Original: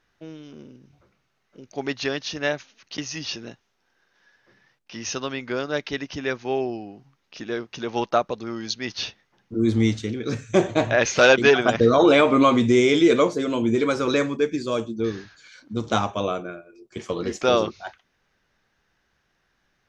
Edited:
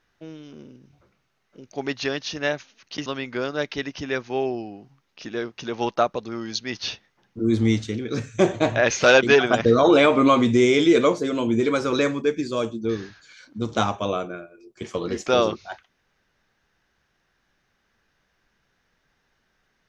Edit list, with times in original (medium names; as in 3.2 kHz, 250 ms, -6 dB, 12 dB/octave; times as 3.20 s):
3.06–5.21 s: delete